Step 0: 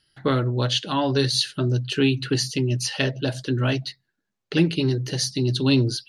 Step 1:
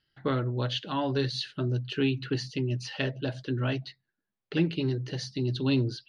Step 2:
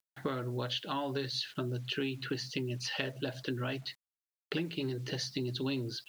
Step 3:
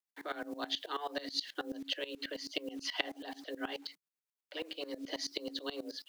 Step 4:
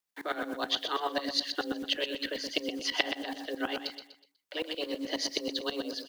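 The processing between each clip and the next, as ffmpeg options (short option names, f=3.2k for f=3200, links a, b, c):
-af "lowpass=3.6k,volume=-6.5dB"
-af "lowshelf=f=210:g=-9,acompressor=threshold=-39dB:ratio=5,acrusher=bits=10:mix=0:aa=0.000001,volume=6dB"
-filter_complex "[0:a]acrossover=split=120|480|6800[a][b][c][d];[b]acompressor=threshold=-45dB:ratio=6[e];[a][e][c][d]amix=inputs=4:normalize=0,afreqshift=150,aeval=exprs='val(0)*pow(10,-19*if(lt(mod(-9.3*n/s,1),2*abs(-9.3)/1000),1-mod(-9.3*n/s,1)/(2*abs(-9.3)/1000),(mod(-9.3*n/s,1)-2*abs(-9.3)/1000)/(1-2*abs(-9.3)/1000))/20)':c=same,volume=4.5dB"
-af "aecho=1:1:123|246|369|492:0.398|0.139|0.0488|0.0171,volume=6dB"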